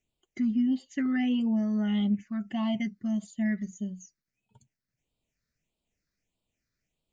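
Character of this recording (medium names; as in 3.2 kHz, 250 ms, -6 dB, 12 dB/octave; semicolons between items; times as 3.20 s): phasing stages 6, 1.6 Hz, lowest notch 790–1700 Hz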